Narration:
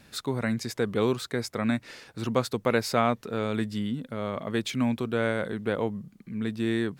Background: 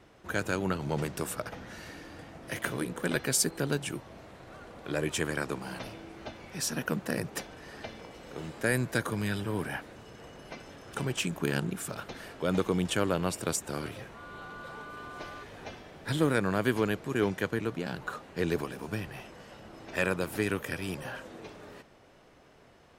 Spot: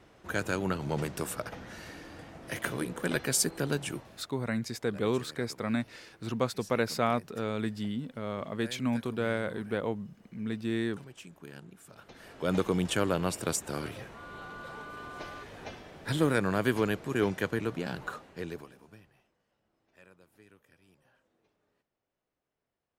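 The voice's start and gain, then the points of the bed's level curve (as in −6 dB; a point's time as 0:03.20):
4.05 s, −4.0 dB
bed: 0:03.98 −0.5 dB
0:04.40 −17.5 dB
0:11.82 −17.5 dB
0:12.49 0 dB
0:18.05 0 dB
0:19.39 −29 dB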